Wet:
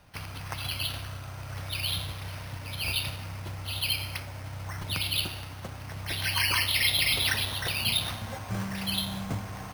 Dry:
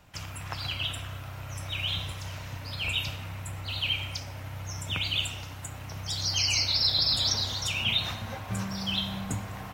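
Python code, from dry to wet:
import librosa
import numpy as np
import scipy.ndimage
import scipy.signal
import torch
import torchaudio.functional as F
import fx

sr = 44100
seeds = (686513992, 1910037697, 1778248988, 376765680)

y = np.repeat(x[::6], 6)[:len(x)]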